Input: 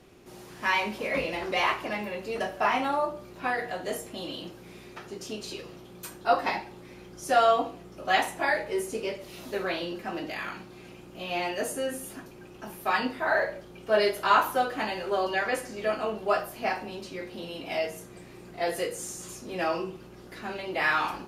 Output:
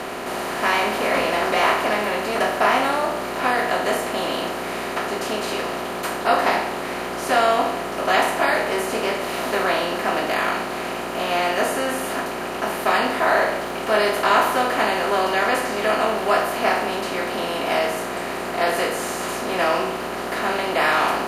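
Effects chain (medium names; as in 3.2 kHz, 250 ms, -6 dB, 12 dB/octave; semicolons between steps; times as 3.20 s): spectral levelling over time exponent 0.4; 13.61–14.45 s: crackle 110 per s -> 45 per s -30 dBFS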